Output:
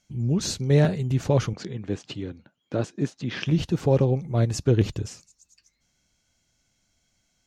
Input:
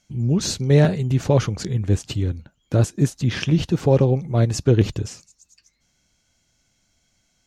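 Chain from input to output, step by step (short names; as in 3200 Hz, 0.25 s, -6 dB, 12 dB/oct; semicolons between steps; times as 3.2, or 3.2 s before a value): 1.53–3.46 BPF 190–4500 Hz; gain -4 dB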